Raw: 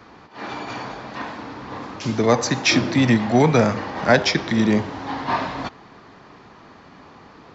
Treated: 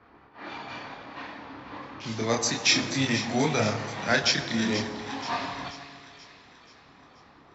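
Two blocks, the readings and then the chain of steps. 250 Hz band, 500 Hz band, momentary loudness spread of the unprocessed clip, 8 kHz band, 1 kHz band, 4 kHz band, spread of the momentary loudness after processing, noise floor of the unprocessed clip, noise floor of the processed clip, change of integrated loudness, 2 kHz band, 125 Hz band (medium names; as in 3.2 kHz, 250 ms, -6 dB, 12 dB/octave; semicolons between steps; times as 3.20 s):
-10.0 dB, -10.0 dB, 17 LU, no reading, -8.5 dB, -1.0 dB, 19 LU, -47 dBFS, -55 dBFS, -6.5 dB, -4.5 dB, -10.0 dB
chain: chorus voices 4, 0.78 Hz, delay 28 ms, depth 2.2 ms; treble shelf 2.2 kHz +11.5 dB; level-controlled noise filter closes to 1.6 kHz, open at -18 dBFS; feedback comb 140 Hz, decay 1.7 s, mix 60%; two-band feedback delay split 1.7 kHz, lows 150 ms, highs 482 ms, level -11.5 dB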